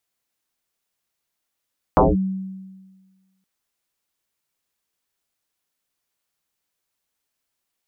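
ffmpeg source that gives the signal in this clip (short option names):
-f lavfi -i "aevalsrc='0.355*pow(10,-3*t/1.47)*sin(2*PI*190*t+8.9*clip(1-t/0.19,0,1)*sin(2*PI*0.61*190*t))':d=1.47:s=44100"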